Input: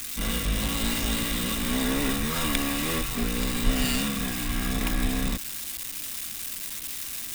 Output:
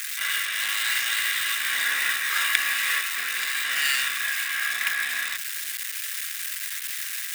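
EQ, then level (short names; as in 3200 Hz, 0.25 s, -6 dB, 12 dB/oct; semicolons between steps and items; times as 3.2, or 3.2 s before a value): resonant high-pass 1700 Hz, resonance Q 3.8; +2.0 dB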